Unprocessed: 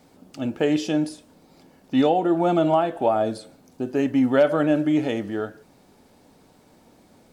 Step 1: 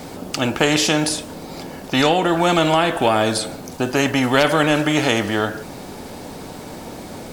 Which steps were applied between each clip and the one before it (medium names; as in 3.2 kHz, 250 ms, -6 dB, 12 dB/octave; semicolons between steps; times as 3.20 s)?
spectrum-flattening compressor 2:1; trim +7 dB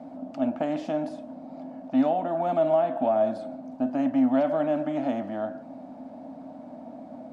two resonant band-passes 410 Hz, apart 1.3 oct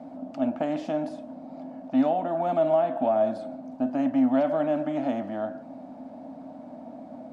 no audible change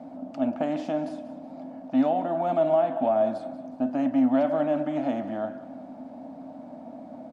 feedback delay 187 ms, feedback 45%, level -16 dB